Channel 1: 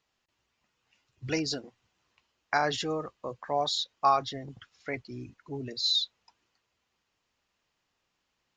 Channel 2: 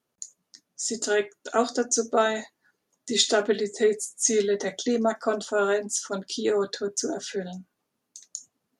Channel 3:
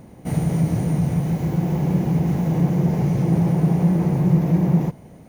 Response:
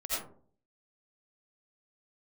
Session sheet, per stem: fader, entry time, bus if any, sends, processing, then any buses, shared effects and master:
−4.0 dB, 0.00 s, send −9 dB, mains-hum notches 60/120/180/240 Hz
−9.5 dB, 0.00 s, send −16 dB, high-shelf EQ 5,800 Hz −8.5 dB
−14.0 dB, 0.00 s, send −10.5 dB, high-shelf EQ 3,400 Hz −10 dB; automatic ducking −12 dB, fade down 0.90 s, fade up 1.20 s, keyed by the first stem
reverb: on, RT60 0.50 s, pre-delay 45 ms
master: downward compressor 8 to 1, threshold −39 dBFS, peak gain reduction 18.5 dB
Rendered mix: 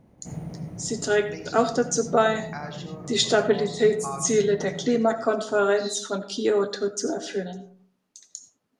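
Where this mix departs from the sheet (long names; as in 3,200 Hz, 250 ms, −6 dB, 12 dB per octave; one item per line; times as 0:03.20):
stem 1 −4.0 dB → −12.0 dB
stem 2 −9.5 dB → +1.5 dB
master: missing downward compressor 8 to 1, threshold −39 dBFS, peak gain reduction 18.5 dB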